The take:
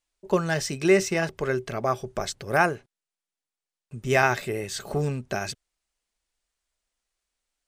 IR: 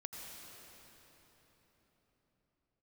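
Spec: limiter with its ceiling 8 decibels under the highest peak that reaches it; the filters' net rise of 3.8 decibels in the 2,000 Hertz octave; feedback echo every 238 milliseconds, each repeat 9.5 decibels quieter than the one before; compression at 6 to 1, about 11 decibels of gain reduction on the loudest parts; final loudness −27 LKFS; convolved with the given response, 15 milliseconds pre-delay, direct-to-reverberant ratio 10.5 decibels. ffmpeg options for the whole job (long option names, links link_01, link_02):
-filter_complex "[0:a]equalizer=frequency=2000:width_type=o:gain=5,acompressor=threshold=-25dB:ratio=6,alimiter=limit=-22dB:level=0:latency=1,aecho=1:1:238|476|714|952:0.335|0.111|0.0365|0.012,asplit=2[link_01][link_02];[1:a]atrim=start_sample=2205,adelay=15[link_03];[link_02][link_03]afir=irnorm=-1:irlink=0,volume=-8.5dB[link_04];[link_01][link_04]amix=inputs=2:normalize=0,volume=6dB"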